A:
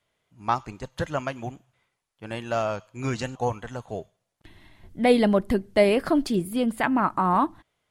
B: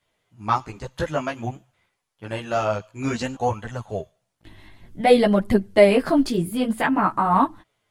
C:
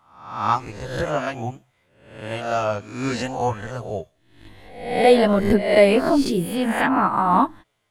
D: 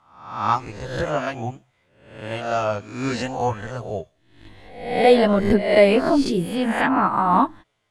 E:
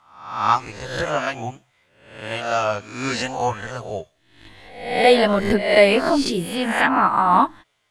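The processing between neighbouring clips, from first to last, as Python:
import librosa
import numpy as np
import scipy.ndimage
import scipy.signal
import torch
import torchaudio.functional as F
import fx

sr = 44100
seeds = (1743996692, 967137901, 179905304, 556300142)

y1 = fx.chorus_voices(x, sr, voices=2, hz=0.54, base_ms=14, depth_ms=4.9, mix_pct=50)
y1 = y1 * 10.0 ** (6.0 / 20.0)
y2 = fx.spec_swells(y1, sr, rise_s=0.68)
y2 = y2 * 10.0 ** (-1.0 / 20.0)
y3 = scipy.signal.sosfilt(scipy.signal.butter(2, 8500.0, 'lowpass', fs=sr, output='sos'), y2)
y4 = fx.tilt_shelf(y3, sr, db=-4.5, hz=790.0)
y4 = y4 * 10.0 ** (1.5 / 20.0)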